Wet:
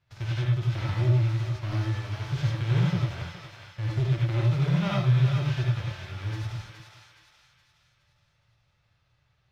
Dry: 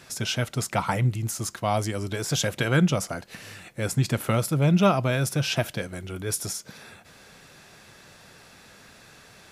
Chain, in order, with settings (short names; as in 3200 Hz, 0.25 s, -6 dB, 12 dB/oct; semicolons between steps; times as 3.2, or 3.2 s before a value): spectral whitening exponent 0.3; gate -42 dBFS, range -14 dB; resonant low shelf 160 Hz +12.5 dB, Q 3; soft clip -13.5 dBFS, distortion -9 dB; air absorption 240 m; resonator 290 Hz, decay 0.83 s, mix 70%; on a send: thinning echo 0.418 s, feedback 48%, high-pass 950 Hz, level -5.5 dB; on the sum: non-linear reverb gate 0.12 s rising, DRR -3 dB